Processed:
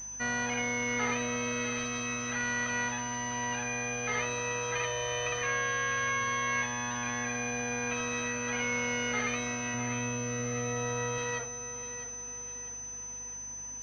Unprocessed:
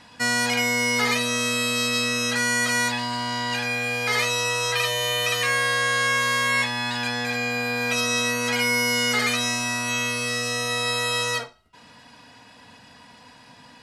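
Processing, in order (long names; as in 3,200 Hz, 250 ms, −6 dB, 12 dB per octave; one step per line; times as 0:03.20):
0:09.74–0:11.18: spectral tilt −2.5 dB per octave
mains hum 50 Hz, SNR 24 dB
on a send: feedback echo with a high-pass in the loop 652 ms, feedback 47%, high-pass 170 Hz, level −11 dB
on the sum: switching amplifier with a slow clock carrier 6,100 Hz
level −8 dB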